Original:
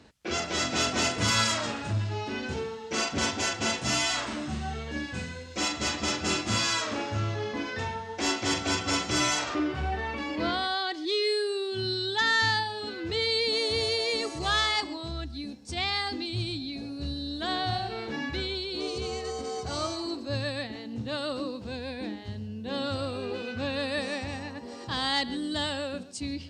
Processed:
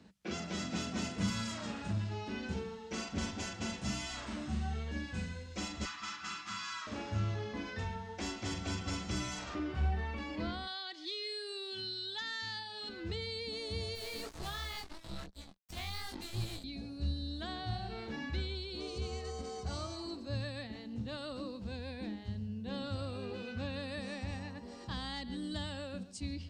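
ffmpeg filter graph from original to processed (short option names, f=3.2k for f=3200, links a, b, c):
-filter_complex "[0:a]asettb=1/sr,asplit=3[a][b][c];[a]atrim=end=5.854[d];[b]atrim=start=5.85:end=6.87,asetpts=PTS-STARTPTS,afade=t=in:d=0.004:c=qsin,afade=t=out:st=1.016:d=0.004:c=qsin,highpass=160,lowpass=6.7k,lowshelf=f=790:t=q:w=3:g=-13.5[e];[c]atrim=start=6.866[f];[d][e]acrossfade=d=0.004:c1=hsin:c2=qsin[g];[g][f]acrossfade=d=0.004:c1=qsin:c2=hsin,asettb=1/sr,asplit=3[h][i][j];[h]atrim=end=10.674[k];[i]atrim=start=10.67:end=12.89,asetpts=PTS-STARTPTS,afade=t=in:d=0.004:c=qsin,afade=t=out:st=2.216:d=0.004:c=qsin,highpass=f=530:p=1,equalizer=f=3.9k:w=0.63:g=7[l];[j]atrim=start=12.886[m];[k][l]acrossfade=d=0.004:c1=hsin:c2=qsin[n];[n][m]acrossfade=d=0.004:c1=qsin:c2=hsin,asettb=1/sr,asplit=3[o][p][q];[o]atrim=end=13.954[r];[p]atrim=start=13.95:end=16.64,asetpts=PTS-STARTPTS,afade=t=in:d=0.004:c=qsin,afade=t=out:st=2.686:d=0.004:c=qsin,acrusher=bits=4:mix=0:aa=0.5,flanger=delay=18:depth=4.7:speed=2.8[s];[q]atrim=start=16.636[t];[r][s]acrossfade=d=0.004:c1=hsin:c2=qsin[u];[u][t]acrossfade=d=0.004:c1=qsin:c2=hsin,asubboost=boost=9.5:cutoff=54,acrossover=split=290[v][w];[w]acompressor=threshold=-32dB:ratio=4[x];[v][x]amix=inputs=2:normalize=0,equalizer=f=190:t=o:w=0.46:g=15,volume=-8dB"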